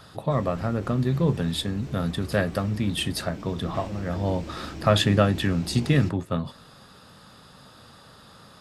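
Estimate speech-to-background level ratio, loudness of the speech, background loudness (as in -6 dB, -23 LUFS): 14.5 dB, -25.5 LUFS, -40.0 LUFS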